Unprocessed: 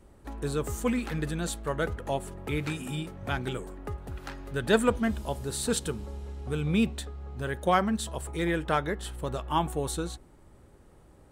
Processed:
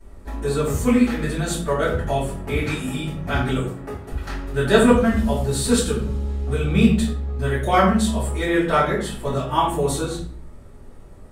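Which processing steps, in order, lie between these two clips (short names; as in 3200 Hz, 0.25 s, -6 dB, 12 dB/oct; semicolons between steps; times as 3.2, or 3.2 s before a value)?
3.6–4.12 HPF 240 Hz 6 dB/oct; shoebox room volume 55 m³, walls mixed, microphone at 2.8 m; gain -4 dB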